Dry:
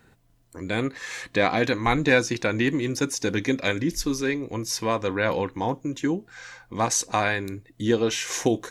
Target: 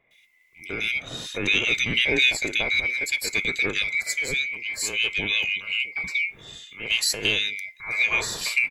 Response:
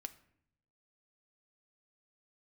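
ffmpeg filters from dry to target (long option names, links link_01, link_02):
-filter_complex "[0:a]afftfilt=real='real(if(lt(b,920),b+92*(1-2*mod(floor(b/92),2)),b),0)':imag='imag(if(lt(b,920),b+92*(1-2*mod(floor(b/92),2)),b),0)':win_size=2048:overlap=0.75,acrossover=split=1700[link_01][link_02];[link_02]adelay=110[link_03];[link_01][link_03]amix=inputs=2:normalize=0,volume=1dB"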